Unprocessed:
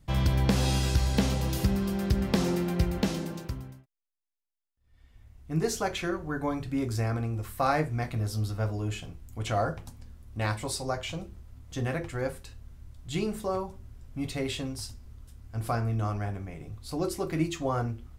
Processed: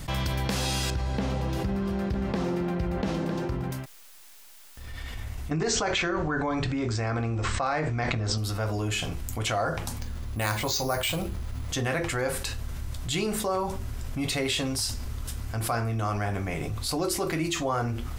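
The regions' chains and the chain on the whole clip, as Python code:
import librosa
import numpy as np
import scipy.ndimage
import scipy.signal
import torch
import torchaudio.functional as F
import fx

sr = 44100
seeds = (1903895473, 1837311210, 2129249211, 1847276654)

y = fx.chain(x, sr, fx.lowpass(hz=1000.0, slope=6),
    fx.echo_single(ms=954, db=-15.0), at=(0.9, 3.71))
y = fx.chain(y, sr, fx.brickwall_lowpass(high_hz=8400.0),
    fx.high_shelf(hz=6500.0, db=-11.5),
    fx.env_flatten(amount_pct=100), at=(5.51, 8.38))
y = fx.chain(y, sr, fx.bass_treble(bass_db=2, treble_db=4),
    fx.resample_bad(factor=4, down='filtered', up='hold'), at=(10.0, 11.69))
y = fx.rider(y, sr, range_db=4, speed_s=0.5)
y = fx.low_shelf(y, sr, hz=490.0, db=-8.5)
y = fx.env_flatten(y, sr, amount_pct=70)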